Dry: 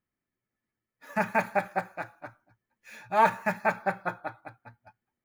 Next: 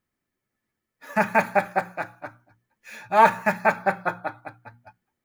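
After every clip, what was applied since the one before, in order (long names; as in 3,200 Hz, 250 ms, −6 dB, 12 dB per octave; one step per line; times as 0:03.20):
mains-hum notches 60/120/180/240/300 Hz
level +6 dB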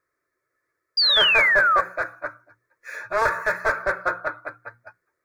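mid-hump overdrive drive 23 dB, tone 2,000 Hz, clips at −4 dBFS
phaser with its sweep stopped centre 810 Hz, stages 6
sound drawn into the spectrogram fall, 0:00.97–0:01.81, 1,100–4,900 Hz −14 dBFS
level −4 dB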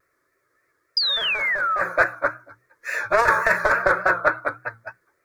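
compressor whose output falls as the input rises −22 dBFS, ratio −0.5
pitch vibrato 3.5 Hz 83 cents
level +4.5 dB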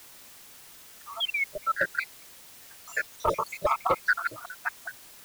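time-frequency cells dropped at random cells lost 82%
in parallel at −10.5 dB: sine wavefolder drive 5 dB, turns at −10 dBFS
on the sum: background noise white −45 dBFS
level −5 dB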